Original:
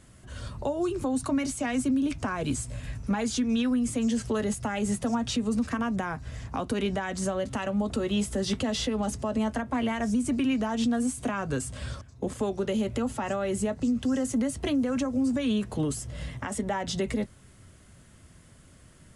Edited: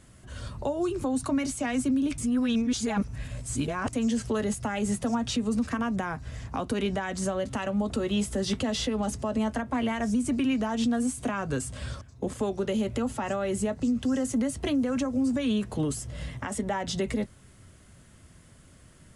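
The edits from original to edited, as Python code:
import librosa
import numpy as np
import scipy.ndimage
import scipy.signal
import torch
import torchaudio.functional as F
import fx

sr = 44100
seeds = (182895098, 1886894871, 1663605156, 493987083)

y = fx.edit(x, sr, fx.reverse_span(start_s=2.18, length_s=1.75), tone=tone)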